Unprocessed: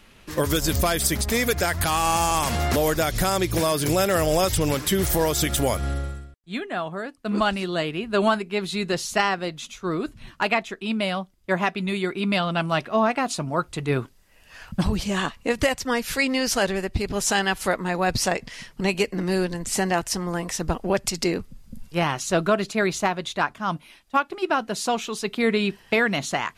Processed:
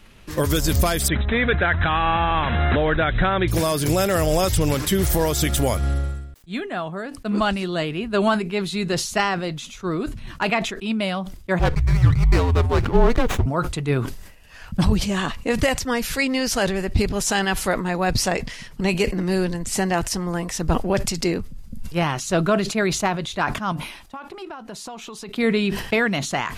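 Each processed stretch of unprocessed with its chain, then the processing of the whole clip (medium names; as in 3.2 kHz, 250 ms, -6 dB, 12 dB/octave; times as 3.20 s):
1.08–3.48 s: brick-wall FIR low-pass 4 kHz + dynamic bell 1.6 kHz, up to +8 dB, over -43 dBFS
11.59–13.46 s: peaking EQ 340 Hz +8 dB 1.3 oct + frequency shift -250 Hz + sliding maximum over 9 samples
23.72–25.29 s: peaking EQ 940 Hz +5.5 dB 0.98 oct + compression 8:1, threshold -33 dBFS
whole clip: bass shelf 160 Hz +6.5 dB; decay stretcher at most 71 dB/s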